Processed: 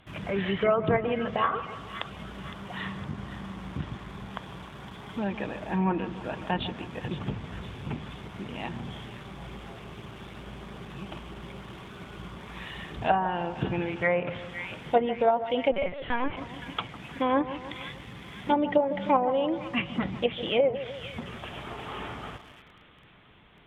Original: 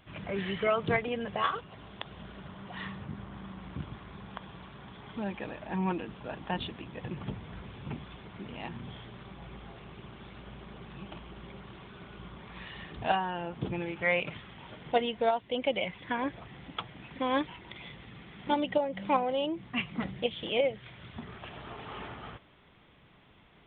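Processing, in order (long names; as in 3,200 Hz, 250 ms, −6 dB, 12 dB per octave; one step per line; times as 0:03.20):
echo with a time of its own for lows and highs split 1,300 Hz, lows 153 ms, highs 512 ms, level −12.5 dB
in parallel at −11 dB: bit-depth reduction 8 bits, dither none
on the sum: treble cut that deepens with the level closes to 1,300 Hz, closed at −22 dBFS
0:15.72–0:16.37: linear-prediction vocoder at 8 kHz pitch kept
level +2.5 dB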